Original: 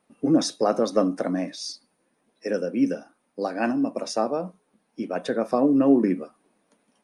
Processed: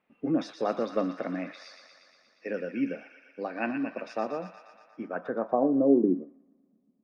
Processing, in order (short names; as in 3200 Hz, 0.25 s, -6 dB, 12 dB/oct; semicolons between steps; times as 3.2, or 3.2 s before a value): thin delay 0.118 s, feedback 72%, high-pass 1400 Hz, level -6.5 dB; low-pass sweep 2500 Hz -> 220 Hz, 4.83–6.44; gain -7.5 dB